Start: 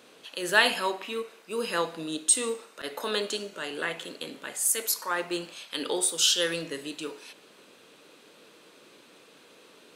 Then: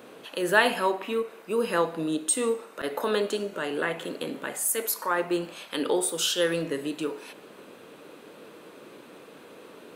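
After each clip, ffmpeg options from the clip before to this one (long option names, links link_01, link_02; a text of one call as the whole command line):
ffmpeg -i in.wav -filter_complex "[0:a]equalizer=frequency=5300:width=0.46:gain=-12.5,asplit=2[link_01][link_02];[link_02]acompressor=threshold=-40dB:ratio=6,volume=0.5dB[link_03];[link_01][link_03]amix=inputs=2:normalize=0,volume=3.5dB" out.wav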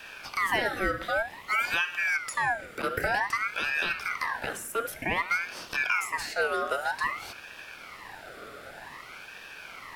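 ffmpeg -i in.wav -filter_complex "[0:a]acrossover=split=960|2400[link_01][link_02][link_03];[link_01]acompressor=threshold=-28dB:ratio=4[link_04];[link_02]acompressor=threshold=-47dB:ratio=4[link_05];[link_03]acompressor=threshold=-45dB:ratio=4[link_06];[link_04][link_05][link_06]amix=inputs=3:normalize=0,afreqshift=15,aeval=exprs='val(0)*sin(2*PI*1500*n/s+1500*0.4/0.53*sin(2*PI*0.53*n/s))':channel_layout=same,volume=6dB" out.wav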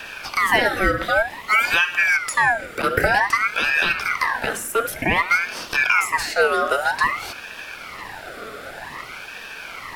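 ffmpeg -i in.wav -af "aphaser=in_gain=1:out_gain=1:delay=4.6:decay=0.26:speed=1:type=sinusoidal,volume=9dB" out.wav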